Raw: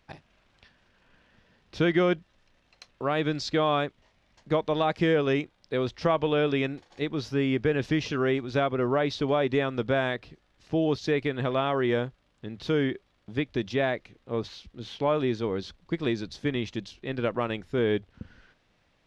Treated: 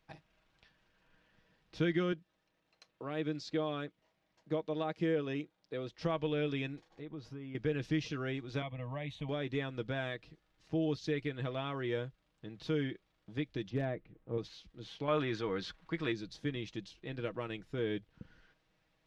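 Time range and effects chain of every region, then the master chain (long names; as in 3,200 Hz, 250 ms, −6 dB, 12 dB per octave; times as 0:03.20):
0:02.12–0:05.99: high-pass filter 340 Hz 6 dB per octave + tilt shelving filter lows +4.5 dB, about 720 Hz
0:06.88–0:07.55: high-shelf EQ 2,300 Hz −10 dB + downward compressor 4 to 1, threshold −35 dBFS
0:08.62–0:09.29: parametric band 73 Hz +4.5 dB 1.5 octaves + phaser with its sweep stopped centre 1,400 Hz, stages 6
0:13.70–0:14.38: low-pass filter 2,500 Hz + tilt shelving filter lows +6 dB, about 810 Hz + hard clipping −14.5 dBFS
0:15.08–0:16.12: transient designer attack −3 dB, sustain +3 dB + parametric band 1,400 Hz +12 dB 2.1 octaves
whole clip: comb filter 6.3 ms, depth 47%; dynamic equaliser 850 Hz, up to −6 dB, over −39 dBFS, Q 0.84; level −9 dB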